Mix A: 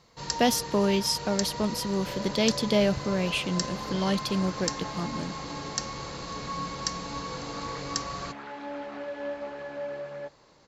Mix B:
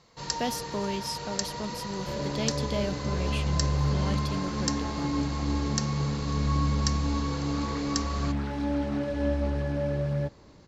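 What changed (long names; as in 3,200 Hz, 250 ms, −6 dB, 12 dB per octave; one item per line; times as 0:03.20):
speech −8.0 dB
second sound: remove band-pass filter 580–3,100 Hz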